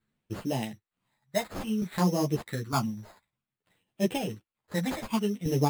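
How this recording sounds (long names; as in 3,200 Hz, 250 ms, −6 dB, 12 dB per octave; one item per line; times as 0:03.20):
tremolo saw down 1.1 Hz, depth 65%
phaser sweep stages 8, 0.57 Hz, lowest notch 360–1,500 Hz
aliases and images of a low sample rate 5,800 Hz, jitter 0%
a shimmering, thickened sound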